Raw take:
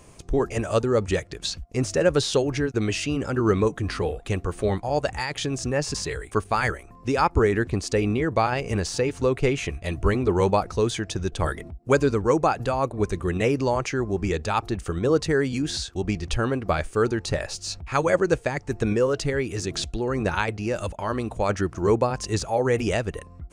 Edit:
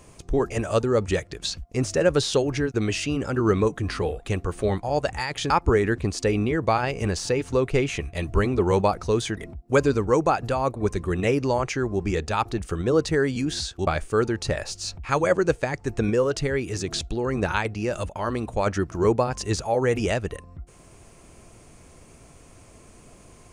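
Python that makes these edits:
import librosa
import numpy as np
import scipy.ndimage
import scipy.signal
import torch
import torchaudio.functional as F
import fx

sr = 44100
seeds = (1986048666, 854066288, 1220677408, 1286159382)

y = fx.edit(x, sr, fx.cut(start_s=5.5, length_s=1.69),
    fx.cut(start_s=11.06, length_s=0.48),
    fx.cut(start_s=16.04, length_s=0.66), tone=tone)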